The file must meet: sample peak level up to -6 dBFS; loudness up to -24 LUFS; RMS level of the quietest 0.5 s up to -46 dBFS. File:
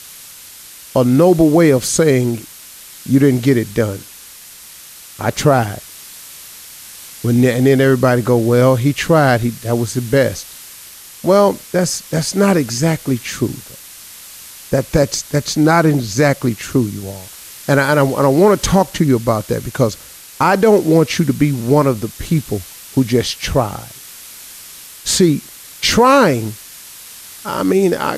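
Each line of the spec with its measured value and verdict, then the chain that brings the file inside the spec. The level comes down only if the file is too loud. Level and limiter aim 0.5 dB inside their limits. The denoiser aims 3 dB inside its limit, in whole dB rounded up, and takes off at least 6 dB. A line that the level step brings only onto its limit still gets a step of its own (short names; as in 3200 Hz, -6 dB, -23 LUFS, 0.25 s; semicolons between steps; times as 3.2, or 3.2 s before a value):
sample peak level -2.0 dBFS: fail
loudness -15.0 LUFS: fail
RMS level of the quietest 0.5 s -38 dBFS: fail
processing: gain -9.5 dB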